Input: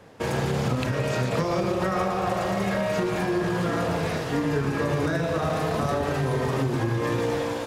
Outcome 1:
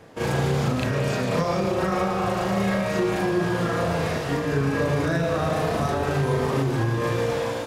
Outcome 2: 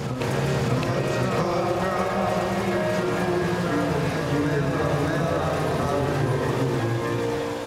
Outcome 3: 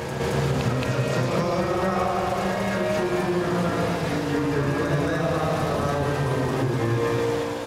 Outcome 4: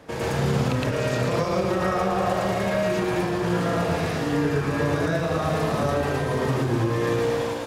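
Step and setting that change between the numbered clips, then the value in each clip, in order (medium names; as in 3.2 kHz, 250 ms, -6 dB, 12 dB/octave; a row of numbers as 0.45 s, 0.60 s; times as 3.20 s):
reverse echo, time: 36 ms, 613 ms, 221 ms, 114 ms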